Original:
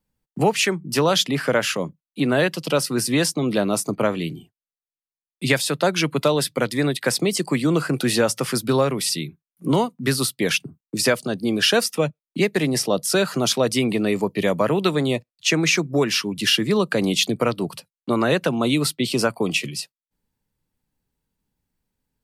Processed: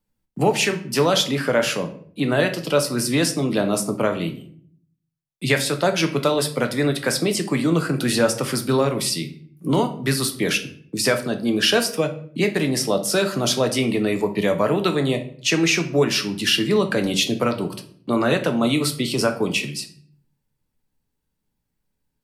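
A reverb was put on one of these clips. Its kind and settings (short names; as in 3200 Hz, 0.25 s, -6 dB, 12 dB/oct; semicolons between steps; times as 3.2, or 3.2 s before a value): shoebox room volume 66 m³, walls mixed, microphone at 0.37 m; gain -1 dB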